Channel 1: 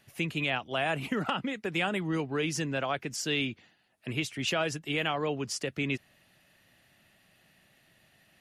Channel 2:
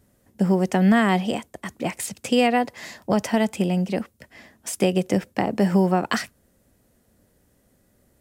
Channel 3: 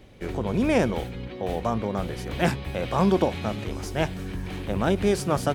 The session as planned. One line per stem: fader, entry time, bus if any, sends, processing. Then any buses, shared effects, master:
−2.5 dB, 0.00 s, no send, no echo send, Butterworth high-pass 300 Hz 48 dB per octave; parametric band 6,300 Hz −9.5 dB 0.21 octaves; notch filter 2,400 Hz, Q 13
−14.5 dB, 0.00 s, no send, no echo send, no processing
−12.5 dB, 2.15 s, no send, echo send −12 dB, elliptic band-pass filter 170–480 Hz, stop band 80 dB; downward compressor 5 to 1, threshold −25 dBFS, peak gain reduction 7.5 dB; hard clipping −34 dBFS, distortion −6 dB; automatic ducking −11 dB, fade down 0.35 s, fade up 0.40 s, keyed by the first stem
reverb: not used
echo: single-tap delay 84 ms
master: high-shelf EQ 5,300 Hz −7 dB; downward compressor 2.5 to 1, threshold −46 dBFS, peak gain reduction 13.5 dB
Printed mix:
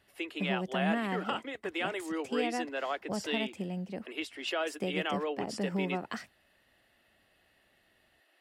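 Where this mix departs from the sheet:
stem 3: muted
master: missing downward compressor 2.5 to 1, threshold −46 dBFS, peak gain reduction 13.5 dB

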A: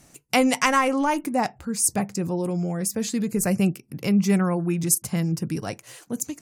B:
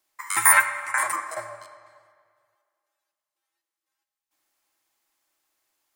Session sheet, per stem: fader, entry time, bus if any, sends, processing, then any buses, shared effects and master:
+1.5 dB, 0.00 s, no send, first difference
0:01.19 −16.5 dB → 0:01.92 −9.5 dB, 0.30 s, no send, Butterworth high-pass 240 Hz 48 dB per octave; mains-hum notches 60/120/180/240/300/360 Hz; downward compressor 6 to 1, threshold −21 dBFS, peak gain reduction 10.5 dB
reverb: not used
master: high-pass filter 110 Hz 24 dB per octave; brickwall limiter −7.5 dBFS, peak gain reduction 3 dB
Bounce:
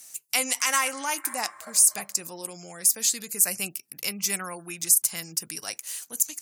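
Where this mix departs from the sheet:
stem A +1.5 dB → +10.5 dB
master: missing high-pass filter 110 Hz 24 dB per octave

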